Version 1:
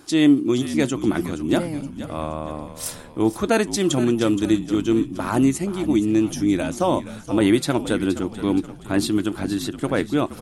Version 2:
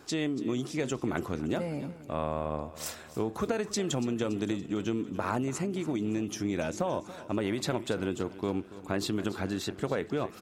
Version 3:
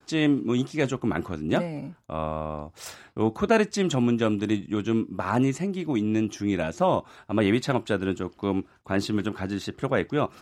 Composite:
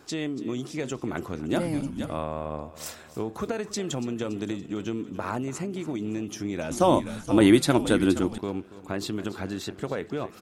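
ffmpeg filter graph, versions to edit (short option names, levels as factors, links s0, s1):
-filter_complex "[0:a]asplit=2[s0][s1];[1:a]asplit=3[s2][s3][s4];[s2]atrim=end=1.71[s5];[s0]atrim=start=1.47:end=2.26[s6];[s3]atrim=start=2.02:end=6.712[s7];[s1]atrim=start=6.708:end=8.382[s8];[s4]atrim=start=8.378[s9];[s5][s6]acrossfade=d=0.24:c1=tri:c2=tri[s10];[s10][s7]acrossfade=d=0.24:c1=tri:c2=tri[s11];[s11][s8]acrossfade=d=0.004:c1=hsin:c2=hsin[s12];[s12][s9]acrossfade=d=0.004:c1=hsin:c2=hsin"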